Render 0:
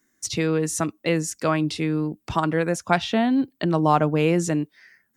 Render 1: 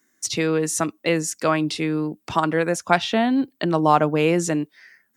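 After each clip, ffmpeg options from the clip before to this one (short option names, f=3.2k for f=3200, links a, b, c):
-af "highpass=f=240:p=1,volume=3dB"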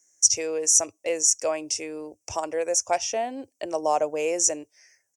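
-af "firequalizer=gain_entry='entry(100,0);entry(160,-30);entry(260,-16);entry(550,1);entry(1300,-16);entry(2500,-5);entry(3900,-19);entry(5700,14);entry(14000,-10)':delay=0.05:min_phase=1,volume=-1.5dB"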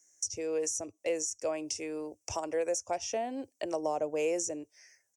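-filter_complex "[0:a]acrossover=split=460[a][b];[b]acompressor=threshold=-31dB:ratio=10[c];[a][c]amix=inputs=2:normalize=0,volume=-2dB"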